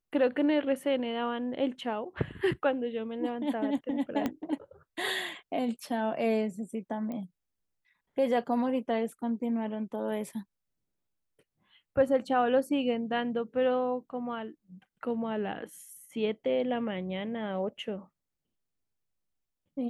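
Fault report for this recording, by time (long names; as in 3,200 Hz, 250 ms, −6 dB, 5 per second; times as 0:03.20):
0:04.26: click −17 dBFS
0:07.12: click −27 dBFS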